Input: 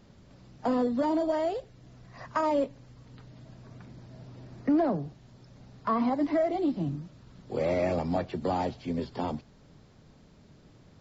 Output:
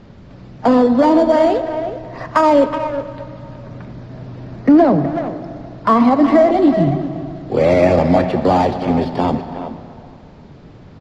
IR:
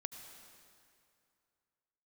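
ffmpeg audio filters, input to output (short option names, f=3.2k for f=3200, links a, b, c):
-filter_complex "[0:a]asplit=2[a][b];[b]adelay=370,highpass=300,lowpass=3.4k,asoftclip=type=hard:threshold=-24.5dB,volume=-10dB[c];[a][c]amix=inputs=2:normalize=0,asplit=2[d][e];[1:a]atrim=start_sample=2205[f];[e][f]afir=irnorm=-1:irlink=0,volume=7.5dB[g];[d][g]amix=inputs=2:normalize=0,adynamicsmooth=sensitivity=4.5:basefreq=3.8k,volume=6.5dB"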